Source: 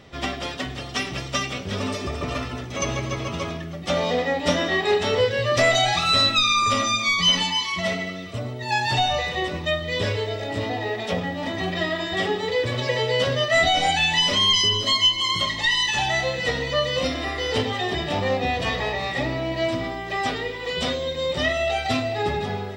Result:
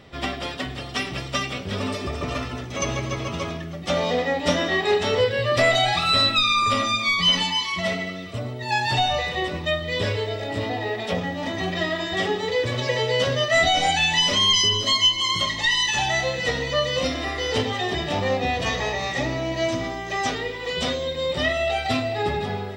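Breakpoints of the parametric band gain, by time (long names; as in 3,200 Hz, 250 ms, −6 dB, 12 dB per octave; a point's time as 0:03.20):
parametric band 6,300 Hz 0.28 octaves
−6 dB
from 0:02.13 0 dB
from 0:05.24 −10 dB
from 0:07.32 −2.5 dB
from 0:11.15 +4 dB
from 0:18.66 +12.5 dB
from 0:20.35 +3 dB
from 0:21.07 −3.5 dB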